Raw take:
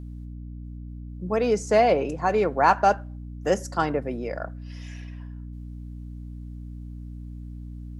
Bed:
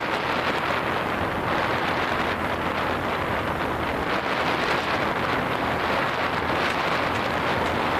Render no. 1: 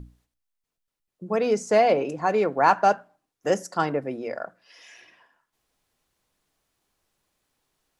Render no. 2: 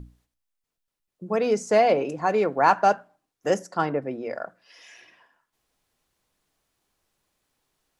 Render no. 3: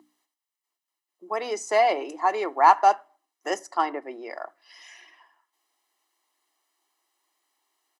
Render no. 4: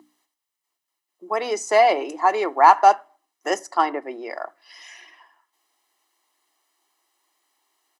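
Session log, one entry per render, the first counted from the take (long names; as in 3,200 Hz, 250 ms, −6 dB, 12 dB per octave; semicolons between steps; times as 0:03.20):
mains-hum notches 60/120/180/240/300 Hz
0:03.59–0:04.30: high-shelf EQ 4,900 Hz −10 dB
elliptic high-pass filter 330 Hz, stop band 80 dB; comb filter 1 ms, depth 68%
level +4.5 dB; brickwall limiter −2 dBFS, peak gain reduction 2 dB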